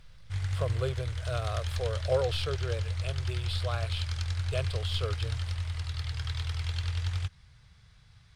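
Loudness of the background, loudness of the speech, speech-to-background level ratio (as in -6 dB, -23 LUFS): -34.0 LUFS, -35.5 LUFS, -1.5 dB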